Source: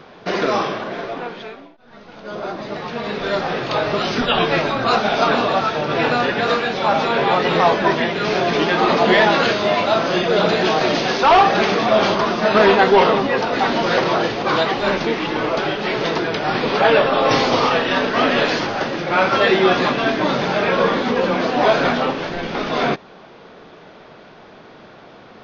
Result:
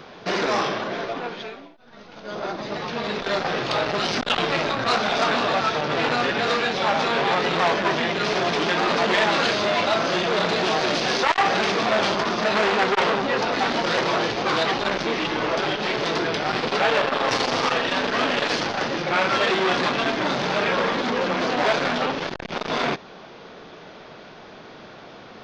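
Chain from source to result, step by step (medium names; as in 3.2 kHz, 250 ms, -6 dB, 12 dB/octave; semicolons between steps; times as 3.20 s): treble shelf 3.5 kHz +6.5 dB; in parallel at +1 dB: peak limiter -11 dBFS, peak gain reduction 8 dB; on the sum: transformer saturation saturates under 1.7 kHz; trim -7 dB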